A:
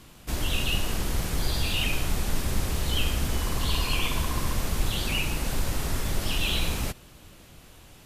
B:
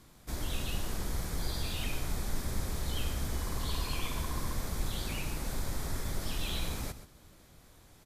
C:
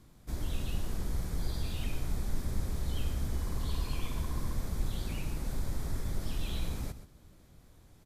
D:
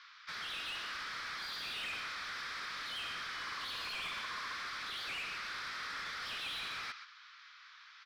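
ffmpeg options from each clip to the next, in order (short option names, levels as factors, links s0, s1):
-af "equalizer=f=2800:w=4.9:g=-10,aecho=1:1:130:0.224,volume=0.422"
-af "lowshelf=f=420:g=8.5,volume=0.473"
-filter_complex "[0:a]asuperpass=centerf=2600:order=12:qfactor=0.6,asplit=2[s0][s1];[s1]highpass=f=720:p=1,volume=15.8,asoftclip=type=tanh:threshold=0.0237[s2];[s0][s2]amix=inputs=2:normalize=0,lowpass=f=2000:p=1,volume=0.501,volume=1.41"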